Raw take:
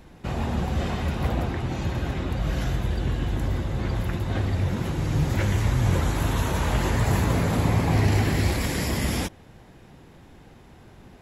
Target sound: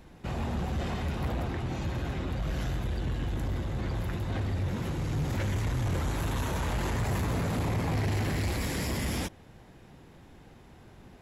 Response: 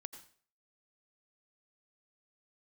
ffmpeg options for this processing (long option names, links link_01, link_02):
-af "asoftclip=type=tanh:threshold=-21dB,volume=-3.5dB"